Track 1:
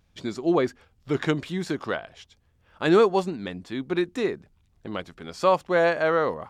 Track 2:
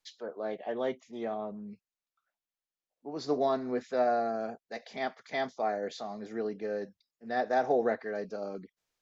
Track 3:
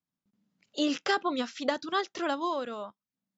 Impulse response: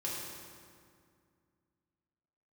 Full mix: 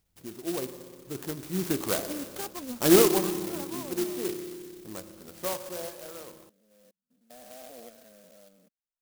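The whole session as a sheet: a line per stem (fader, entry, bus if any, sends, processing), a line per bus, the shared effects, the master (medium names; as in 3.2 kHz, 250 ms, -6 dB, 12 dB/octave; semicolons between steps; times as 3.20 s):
1.31 s -13.5 dB -> 1.63 s -2 dB -> 2.92 s -2 dB -> 3.29 s -11 dB -> 5.35 s -11 dB -> 5.97 s -23.5 dB, 0.00 s, send -8.5 dB, none
-13.5 dB, 0.00 s, no send, spectrogram pixelated in time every 200 ms; peaking EQ 310 Hz -6.5 dB 0.26 oct; static phaser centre 600 Hz, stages 8; auto duck -13 dB, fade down 0.35 s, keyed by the first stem
-10.0 dB, 1.30 s, no send, peaking EQ 230 Hz +10.5 dB 0.26 oct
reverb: on, RT60 2.2 s, pre-delay 3 ms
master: sampling jitter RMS 0.15 ms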